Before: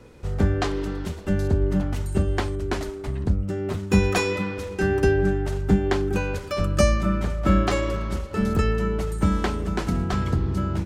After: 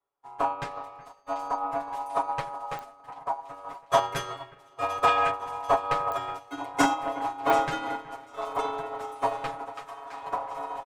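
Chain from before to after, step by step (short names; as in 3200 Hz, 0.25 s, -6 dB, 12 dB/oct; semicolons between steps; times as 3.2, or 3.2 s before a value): one-sided fold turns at -12.5 dBFS; 1–1.56 whine 5500 Hz -46 dBFS; bell 4900 Hz -4.5 dB 0.44 oct; ring modulator 870 Hz; 9.7–10.22 HPF 820 Hz 12 dB/oct; comb 7.1 ms, depth 89%; echo with dull and thin repeats by turns 0.37 s, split 2300 Hz, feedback 85%, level -9 dB; 5.08–5.31 spectral gain 1500–8800 Hz +8 dB; pops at 2.79/6.12/7.5, -12 dBFS; upward expander 2.5:1, over -42 dBFS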